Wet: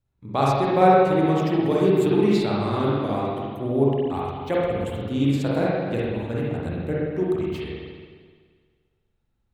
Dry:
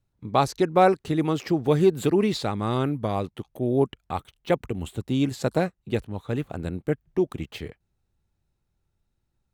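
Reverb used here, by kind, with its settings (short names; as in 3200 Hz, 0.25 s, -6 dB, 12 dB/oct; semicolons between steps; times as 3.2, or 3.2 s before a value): spring tank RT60 1.7 s, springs 43/58 ms, chirp 25 ms, DRR -6 dB; gain -4.5 dB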